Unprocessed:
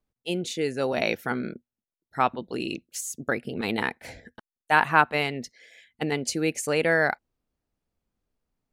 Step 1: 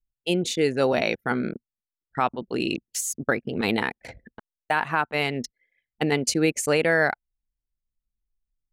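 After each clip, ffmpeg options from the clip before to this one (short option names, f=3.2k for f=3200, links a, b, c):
-af "anlmdn=0.631,alimiter=limit=-15dB:level=0:latency=1:release=432,volume=5dB"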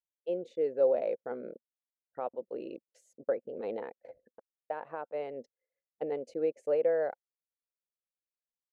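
-af "bandpass=f=530:t=q:w=5.8:csg=0"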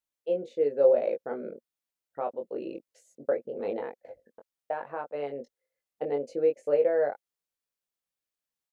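-filter_complex "[0:a]asplit=2[a][b];[b]adelay=21,volume=-4.5dB[c];[a][c]amix=inputs=2:normalize=0,volume=3dB"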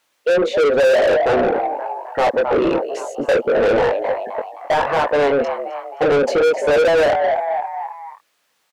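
-filter_complex "[0:a]asplit=5[a][b][c][d][e];[b]adelay=262,afreqshift=84,volume=-17.5dB[f];[c]adelay=524,afreqshift=168,volume=-24.8dB[g];[d]adelay=786,afreqshift=252,volume=-32.2dB[h];[e]adelay=1048,afreqshift=336,volume=-39.5dB[i];[a][f][g][h][i]amix=inputs=5:normalize=0,asplit=2[j][k];[k]highpass=f=720:p=1,volume=36dB,asoftclip=type=tanh:threshold=-10.5dB[l];[j][l]amix=inputs=2:normalize=0,lowpass=f=2.3k:p=1,volume=-6dB,volume=3dB"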